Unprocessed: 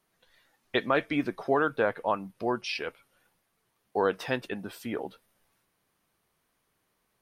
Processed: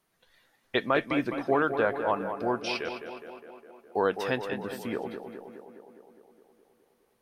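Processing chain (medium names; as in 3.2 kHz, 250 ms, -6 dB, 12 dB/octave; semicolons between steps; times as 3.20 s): tape echo 207 ms, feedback 73%, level -7 dB, low-pass 2.3 kHz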